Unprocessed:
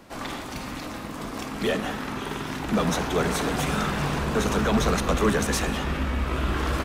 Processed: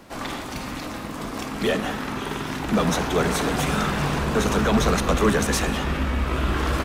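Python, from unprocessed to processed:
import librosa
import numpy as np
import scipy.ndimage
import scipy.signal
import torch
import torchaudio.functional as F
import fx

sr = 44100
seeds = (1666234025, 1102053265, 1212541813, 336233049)

y = fx.dmg_crackle(x, sr, seeds[0], per_s=350.0, level_db=-53.0)
y = y * 10.0 ** (2.5 / 20.0)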